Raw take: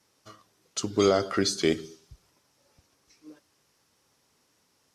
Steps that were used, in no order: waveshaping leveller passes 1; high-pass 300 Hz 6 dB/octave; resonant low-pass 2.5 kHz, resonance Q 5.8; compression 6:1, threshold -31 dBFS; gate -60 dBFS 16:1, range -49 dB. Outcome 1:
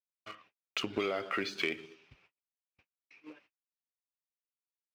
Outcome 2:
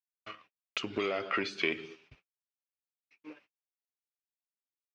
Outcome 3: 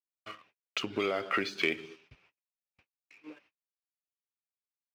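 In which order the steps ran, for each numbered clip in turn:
resonant low-pass > waveshaping leveller > gate > high-pass > compression; waveshaping leveller > high-pass > gate > compression > resonant low-pass; compression > resonant low-pass > waveshaping leveller > gate > high-pass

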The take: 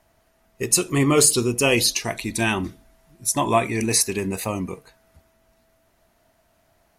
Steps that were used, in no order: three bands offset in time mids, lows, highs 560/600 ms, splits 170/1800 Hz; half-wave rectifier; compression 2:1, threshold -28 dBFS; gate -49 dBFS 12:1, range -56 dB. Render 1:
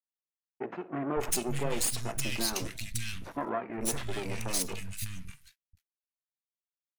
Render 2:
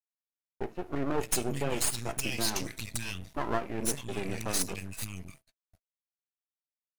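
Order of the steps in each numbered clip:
gate > compression > half-wave rectifier > three bands offset in time; compression > three bands offset in time > gate > half-wave rectifier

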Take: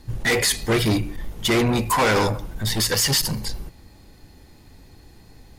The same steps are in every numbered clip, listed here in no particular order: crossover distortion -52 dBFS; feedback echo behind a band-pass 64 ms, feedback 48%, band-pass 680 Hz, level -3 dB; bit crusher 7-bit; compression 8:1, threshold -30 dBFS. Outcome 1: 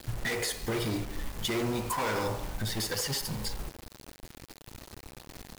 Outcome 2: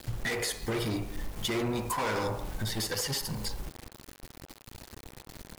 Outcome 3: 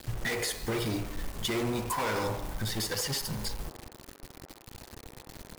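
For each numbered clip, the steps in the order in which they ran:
compression > feedback echo behind a band-pass > bit crusher > crossover distortion; bit crusher > compression > feedback echo behind a band-pass > crossover distortion; compression > bit crusher > crossover distortion > feedback echo behind a band-pass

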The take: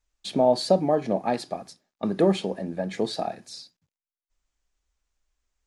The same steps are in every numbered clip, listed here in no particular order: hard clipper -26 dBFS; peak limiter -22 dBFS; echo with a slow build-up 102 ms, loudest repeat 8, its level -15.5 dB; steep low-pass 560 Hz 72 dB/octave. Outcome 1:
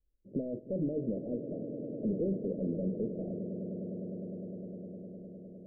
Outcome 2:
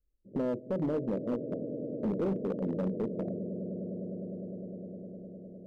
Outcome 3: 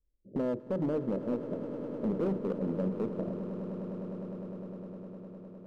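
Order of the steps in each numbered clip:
peak limiter > echo with a slow build-up > hard clipper > steep low-pass; steep low-pass > peak limiter > echo with a slow build-up > hard clipper; steep low-pass > peak limiter > hard clipper > echo with a slow build-up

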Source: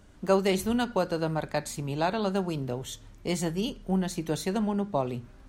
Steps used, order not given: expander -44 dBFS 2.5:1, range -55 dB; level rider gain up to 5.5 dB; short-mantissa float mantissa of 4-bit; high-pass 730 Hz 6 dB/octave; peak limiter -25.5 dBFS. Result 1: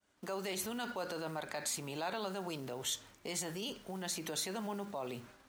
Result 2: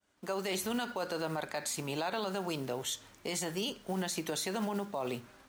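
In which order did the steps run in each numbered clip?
expander > level rider > peak limiter > short-mantissa float > high-pass; short-mantissa float > level rider > expander > high-pass > peak limiter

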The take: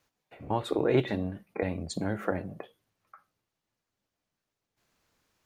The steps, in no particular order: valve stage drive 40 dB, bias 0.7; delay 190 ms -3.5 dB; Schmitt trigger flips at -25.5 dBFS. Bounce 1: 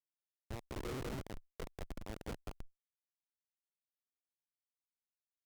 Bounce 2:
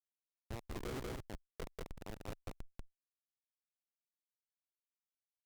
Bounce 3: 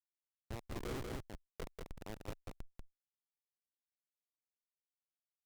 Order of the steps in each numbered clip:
delay > Schmitt trigger > valve stage; Schmitt trigger > delay > valve stage; Schmitt trigger > valve stage > delay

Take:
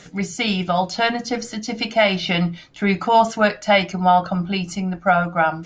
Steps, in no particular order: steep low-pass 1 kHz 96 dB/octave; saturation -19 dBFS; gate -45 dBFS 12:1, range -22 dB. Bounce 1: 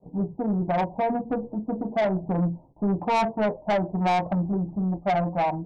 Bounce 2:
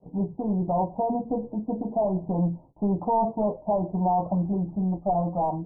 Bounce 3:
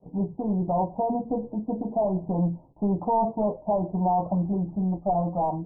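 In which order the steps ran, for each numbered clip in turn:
gate > steep low-pass > saturation; saturation > gate > steep low-pass; gate > saturation > steep low-pass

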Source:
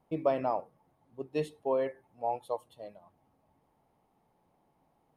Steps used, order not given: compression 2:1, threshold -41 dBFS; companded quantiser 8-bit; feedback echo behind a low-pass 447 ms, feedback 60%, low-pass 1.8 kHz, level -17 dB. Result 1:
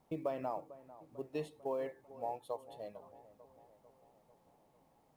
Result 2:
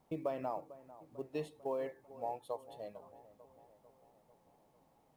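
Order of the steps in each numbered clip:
compression > companded quantiser > feedback echo behind a low-pass; compression > feedback echo behind a low-pass > companded quantiser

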